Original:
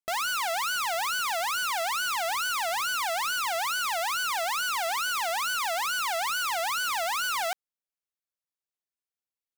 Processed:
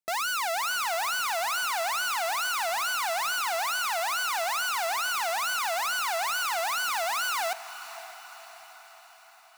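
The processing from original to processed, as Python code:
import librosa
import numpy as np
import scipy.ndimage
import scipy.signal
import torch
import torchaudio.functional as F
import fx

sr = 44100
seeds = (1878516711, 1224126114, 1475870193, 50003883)

y = scipy.signal.sosfilt(scipy.signal.butter(2, 170.0, 'highpass', fs=sr, output='sos'), x)
y = fx.notch(y, sr, hz=3200.0, q=9.9)
y = fx.echo_diffused(y, sr, ms=559, feedback_pct=56, wet_db=-14)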